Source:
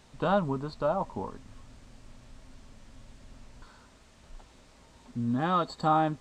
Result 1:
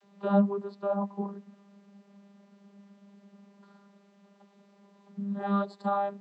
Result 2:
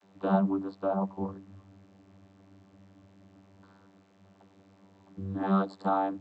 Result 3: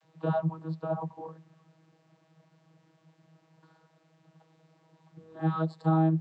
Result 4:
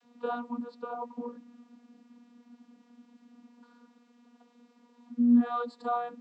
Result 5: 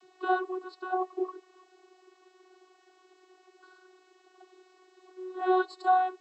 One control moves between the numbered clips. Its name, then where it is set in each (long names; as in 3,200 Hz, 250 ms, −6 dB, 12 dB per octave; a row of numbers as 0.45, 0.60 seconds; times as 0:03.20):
channel vocoder, frequency: 200, 97, 160, 240, 370 Hertz